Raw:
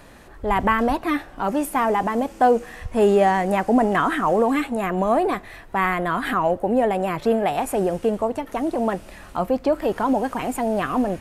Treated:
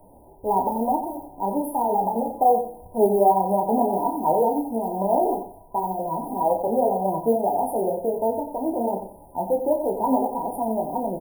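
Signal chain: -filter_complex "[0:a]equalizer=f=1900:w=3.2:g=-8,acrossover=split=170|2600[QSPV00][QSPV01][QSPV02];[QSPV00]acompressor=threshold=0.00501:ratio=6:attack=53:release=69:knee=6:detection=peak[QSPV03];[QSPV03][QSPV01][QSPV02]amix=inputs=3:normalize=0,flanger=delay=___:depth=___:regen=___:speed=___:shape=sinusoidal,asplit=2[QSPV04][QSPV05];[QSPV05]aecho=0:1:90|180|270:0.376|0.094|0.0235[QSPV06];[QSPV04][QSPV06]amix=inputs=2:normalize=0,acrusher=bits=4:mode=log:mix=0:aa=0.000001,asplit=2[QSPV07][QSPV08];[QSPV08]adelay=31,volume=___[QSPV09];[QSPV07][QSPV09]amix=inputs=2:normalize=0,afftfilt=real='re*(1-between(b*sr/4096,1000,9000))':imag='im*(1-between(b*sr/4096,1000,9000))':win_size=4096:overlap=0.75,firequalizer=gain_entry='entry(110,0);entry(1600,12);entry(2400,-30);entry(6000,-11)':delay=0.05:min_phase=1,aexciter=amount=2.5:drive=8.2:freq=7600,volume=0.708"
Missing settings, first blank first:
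9.6, 3.7, 7, 2, 0.473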